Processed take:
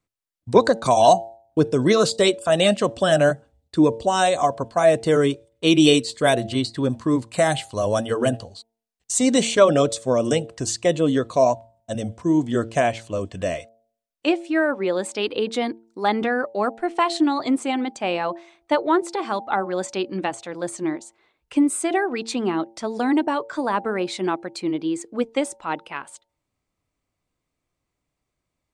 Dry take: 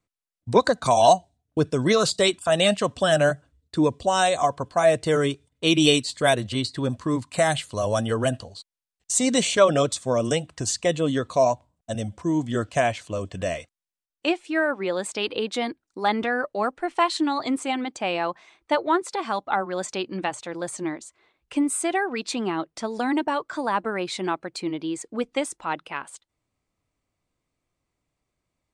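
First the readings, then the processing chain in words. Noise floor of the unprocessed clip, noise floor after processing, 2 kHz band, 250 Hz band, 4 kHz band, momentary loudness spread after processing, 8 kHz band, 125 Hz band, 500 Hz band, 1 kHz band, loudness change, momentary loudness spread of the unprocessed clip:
-85 dBFS, -81 dBFS, +0.5 dB, +4.5 dB, 0.0 dB, 11 LU, 0.0 dB, +1.5 dB, +3.0 dB, +1.5 dB, +2.5 dB, 12 LU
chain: de-hum 113.3 Hz, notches 8; dynamic bell 330 Hz, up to +5 dB, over -34 dBFS, Q 0.72

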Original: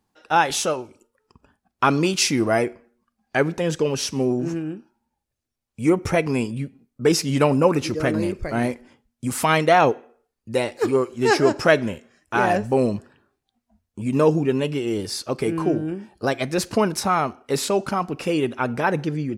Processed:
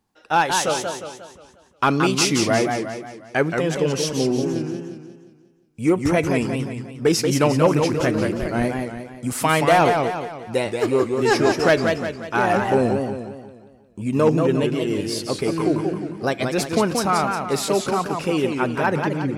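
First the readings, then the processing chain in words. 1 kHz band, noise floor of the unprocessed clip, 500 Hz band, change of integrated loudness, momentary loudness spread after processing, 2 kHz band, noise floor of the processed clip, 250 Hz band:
+1.0 dB, -81 dBFS, +1.0 dB, +1.0 dB, 11 LU, +1.0 dB, -53 dBFS, +1.5 dB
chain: hard clipper -9 dBFS, distortion -24 dB; modulated delay 178 ms, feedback 46%, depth 164 cents, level -5 dB

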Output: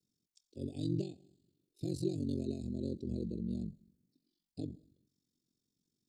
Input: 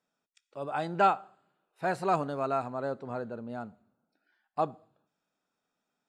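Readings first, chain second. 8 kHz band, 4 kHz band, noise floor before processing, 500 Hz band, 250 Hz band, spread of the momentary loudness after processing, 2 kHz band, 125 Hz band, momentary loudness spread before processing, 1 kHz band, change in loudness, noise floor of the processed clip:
no reading, -5.0 dB, -85 dBFS, -11.0 dB, +1.5 dB, 12 LU, under -30 dB, +2.5 dB, 15 LU, under -35 dB, -7.5 dB, under -85 dBFS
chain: frequency shift -27 Hz; treble shelf 6.9 kHz -3.5 dB; compression 12:1, threshold -28 dBFS, peak gain reduction 11 dB; Chebyshev band-stop 330–4300 Hz, order 3; ring modulator 23 Hz; trim +7.5 dB

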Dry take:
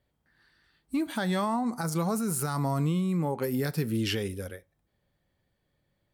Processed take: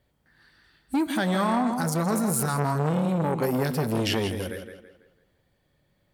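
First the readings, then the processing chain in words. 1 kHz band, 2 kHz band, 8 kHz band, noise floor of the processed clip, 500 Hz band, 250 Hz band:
+5.5 dB, +5.0 dB, +4.0 dB, -70 dBFS, +5.0 dB, +3.5 dB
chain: on a send: tape echo 166 ms, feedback 41%, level -7 dB, low-pass 5.3 kHz; on the sum: transformer saturation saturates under 690 Hz; trim +6 dB

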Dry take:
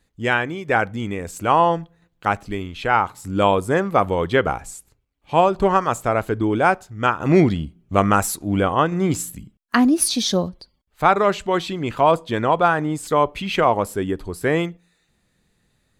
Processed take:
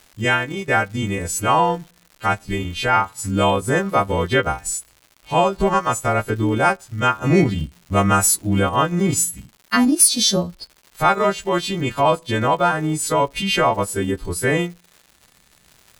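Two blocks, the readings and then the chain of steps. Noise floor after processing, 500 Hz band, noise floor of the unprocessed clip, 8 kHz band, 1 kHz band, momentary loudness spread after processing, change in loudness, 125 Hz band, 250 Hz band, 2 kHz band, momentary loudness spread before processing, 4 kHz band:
-56 dBFS, -1.0 dB, -68 dBFS, +8.5 dB, -0.5 dB, 7 LU, +1.0 dB, +2.5 dB, 0.0 dB, +1.5 dB, 10 LU, +5.0 dB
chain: partials quantised in pitch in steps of 2 st; bass shelf 160 Hz +8 dB; in parallel at 0 dB: compression, threshold -22 dBFS, peak gain reduction 14.5 dB; on the sum: transient shaper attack -1 dB, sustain -7 dB; crackle 220 per s -32 dBFS; trim -3.5 dB

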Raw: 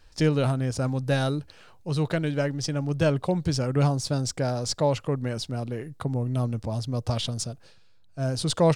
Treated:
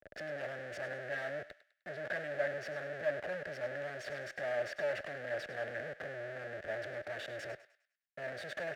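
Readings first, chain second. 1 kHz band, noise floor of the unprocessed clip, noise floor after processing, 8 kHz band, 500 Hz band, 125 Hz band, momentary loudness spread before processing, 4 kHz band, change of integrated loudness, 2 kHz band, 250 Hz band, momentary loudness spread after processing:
-13.5 dB, -53 dBFS, -82 dBFS, -24.0 dB, -10.0 dB, -28.5 dB, 8 LU, -17.5 dB, -13.0 dB, -1.0 dB, -26.0 dB, 8 LU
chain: block-companded coder 5-bit; comb 1.1 ms, depth 72%; dynamic bell 900 Hz, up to +5 dB, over -41 dBFS, Q 1.1; in parallel at 0 dB: compressor with a negative ratio -27 dBFS, ratio -1; on the sum: peak limiter -15.5 dBFS, peak gain reduction 9.5 dB; Schmitt trigger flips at -36 dBFS; two resonant band-passes 1 kHz, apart 1.5 oct; on a send: thinning echo 102 ms, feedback 51%, high-pass 1 kHz, level -12 dB; on the sum: three bands expanded up and down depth 40%; trim -3 dB

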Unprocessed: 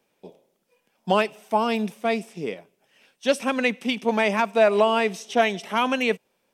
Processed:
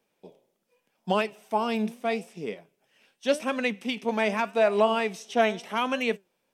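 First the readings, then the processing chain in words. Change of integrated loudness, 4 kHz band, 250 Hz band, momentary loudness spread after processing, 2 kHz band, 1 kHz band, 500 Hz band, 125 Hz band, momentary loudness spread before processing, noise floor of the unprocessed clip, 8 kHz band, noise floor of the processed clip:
-4.0 dB, -4.5 dB, -3.5 dB, 12 LU, -4.5 dB, -4.0 dB, -3.5 dB, -3.5 dB, 12 LU, -72 dBFS, -4.5 dB, -76 dBFS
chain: flange 0.82 Hz, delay 4.2 ms, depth 5.2 ms, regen +84%

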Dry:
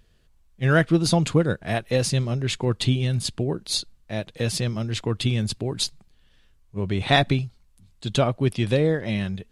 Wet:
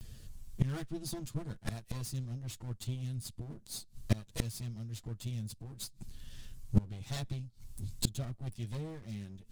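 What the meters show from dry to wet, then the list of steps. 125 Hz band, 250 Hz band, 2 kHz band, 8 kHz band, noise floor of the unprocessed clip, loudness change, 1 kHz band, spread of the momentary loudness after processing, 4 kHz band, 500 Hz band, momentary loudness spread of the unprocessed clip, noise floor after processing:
-13.0 dB, -15.5 dB, -24.0 dB, -12.0 dB, -59 dBFS, -15.5 dB, -23.5 dB, 12 LU, -18.5 dB, -24.0 dB, 8 LU, -59 dBFS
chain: comb filter that takes the minimum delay 8.9 ms; tone controls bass +13 dB, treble +13 dB; inverted gate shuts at -18 dBFS, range -28 dB; trim +3 dB

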